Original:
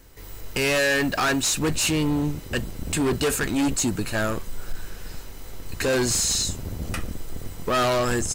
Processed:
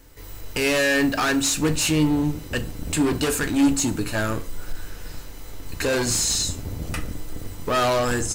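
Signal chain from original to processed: FDN reverb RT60 0.42 s, low-frequency decay 1.05×, high-frequency decay 0.75×, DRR 8 dB

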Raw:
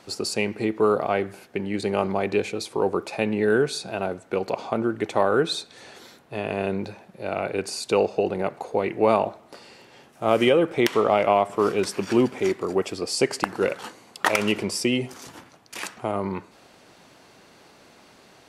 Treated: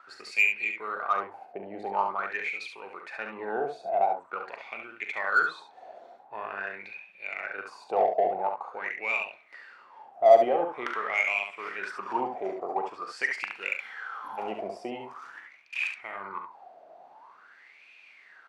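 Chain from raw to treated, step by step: spectral repair 13.83–14.36, 320–10000 Hz before; wah 0.46 Hz 670–2500 Hz, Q 12; in parallel at -5.5 dB: soft clip -33.5 dBFS, distortion -5 dB; on the sum: early reflections 41 ms -10.5 dB, 70 ms -6 dB; gain +8.5 dB

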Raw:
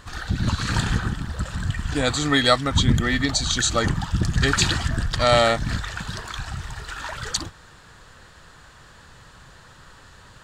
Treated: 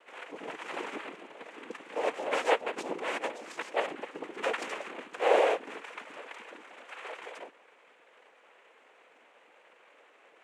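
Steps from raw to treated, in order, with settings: LPF 2300 Hz 24 dB/oct; noise vocoder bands 4; ladder high-pass 430 Hz, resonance 60%

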